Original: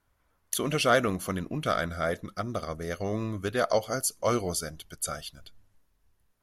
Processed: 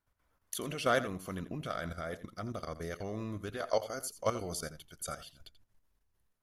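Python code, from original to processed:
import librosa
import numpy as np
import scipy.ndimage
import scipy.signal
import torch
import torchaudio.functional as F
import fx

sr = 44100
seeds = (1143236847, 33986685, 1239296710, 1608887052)

y = fx.peak_eq(x, sr, hz=160.0, db=-14.0, octaves=0.67, at=(3.57, 4.01))
y = fx.level_steps(y, sr, step_db=12)
y = y + 10.0 ** (-14.5 / 20.0) * np.pad(y, (int(85 * sr / 1000.0), 0))[:len(y)]
y = y * 10.0 ** (-2.5 / 20.0)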